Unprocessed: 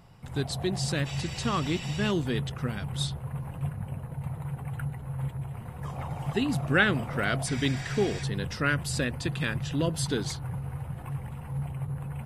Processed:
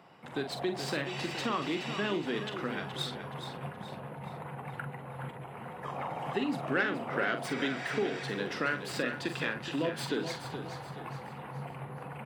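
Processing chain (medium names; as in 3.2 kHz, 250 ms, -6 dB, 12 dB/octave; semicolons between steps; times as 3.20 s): tracing distortion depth 0.041 ms; high-pass 120 Hz; three-band isolator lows -20 dB, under 220 Hz, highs -13 dB, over 3.7 kHz; compression 2.5:1, threshold -35 dBFS, peak gain reduction 12 dB; doubling 44 ms -8.5 dB; feedback delay 423 ms, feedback 42%, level -9.5 dB; trim +3.5 dB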